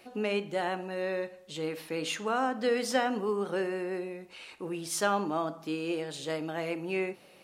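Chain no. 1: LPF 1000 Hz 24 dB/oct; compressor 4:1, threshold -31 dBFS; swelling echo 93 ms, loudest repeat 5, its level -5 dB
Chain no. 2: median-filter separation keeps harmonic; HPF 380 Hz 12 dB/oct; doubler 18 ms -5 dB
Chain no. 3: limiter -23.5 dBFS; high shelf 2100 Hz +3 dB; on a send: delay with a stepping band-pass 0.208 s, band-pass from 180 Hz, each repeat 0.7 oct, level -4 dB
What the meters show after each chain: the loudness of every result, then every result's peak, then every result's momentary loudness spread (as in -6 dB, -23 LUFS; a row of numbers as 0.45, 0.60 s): -31.0, -34.0, -33.5 LUFS; -17.5, -14.0, -19.5 dBFS; 4, 11, 5 LU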